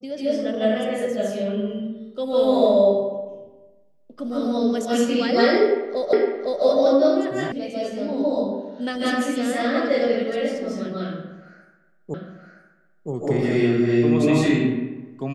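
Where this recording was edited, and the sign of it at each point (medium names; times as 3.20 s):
6.13 s: repeat of the last 0.51 s
7.52 s: sound stops dead
12.14 s: repeat of the last 0.97 s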